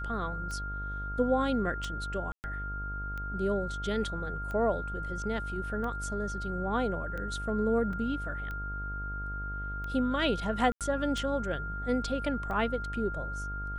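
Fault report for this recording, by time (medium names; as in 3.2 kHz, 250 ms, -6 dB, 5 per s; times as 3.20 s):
buzz 50 Hz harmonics 20 -38 dBFS
tick 45 rpm -27 dBFS
whine 1.4 kHz -37 dBFS
2.32–2.44 s: dropout 119 ms
7.93 s: dropout 3.1 ms
10.72–10.81 s: dropout 87 ms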